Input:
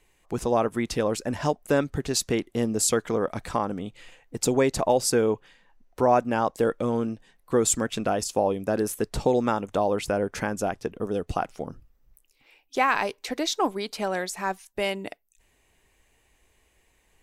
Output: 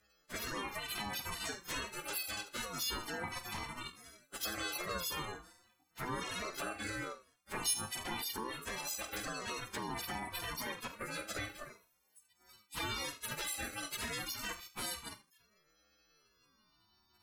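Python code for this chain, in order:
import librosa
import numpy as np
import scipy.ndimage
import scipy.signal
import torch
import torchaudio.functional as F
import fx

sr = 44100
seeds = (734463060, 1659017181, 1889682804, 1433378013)

p1 = fx.freq_snap(x, sr, grid_st=3)
p2 = fx.transient(p1, sr, attack_db=0, sustain_db=-6, at=(7.02, 8.16))
p3 = fx.spec_gate(p2, sr, threshold_db=-10, keep='weak')
p4 = fx.cheby_harmonics(p3, sr, harmonics=(3, 5, 6, 8), levels_db=(-19, -21, -24, -24), full_scale_db=-9.0)
p5 = fx.spec_repair(p4, sr, seeds[0], start_s=6.01, length_s=0.3, low_hz=1500.0, high_hz=8900.0, source='both')
p6 = p5 + fx.echo_feedback(p5, sr, ms=79, feedback_pct=20, wet_db=-15.5, dry=0)
p7 = fx.env_flanger(p6, sr, rest_ms=9.4, full_db=-25.0)
p8 = fx.doubler(p7, sr, ms=45.0, db=-13.0)
p9 = fx.over_compress(p8, sr, threshold_db=-39.0, ratio=-1.0)
p10 = p8 + (p9 * librosa.db_to_amplitude(0.0))
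p11 = scipy.signal.sosfilt(scipy.signal.butter(2, 220.0, 'highpass', fs=sr, output='sos'), p10)
p12 = fx.ring_lfo(p11, sr, carrier_hz=730.0, swing_pct=30, hz=0.44)
y = p12 * librosa.db_to_amplitude(-5.5)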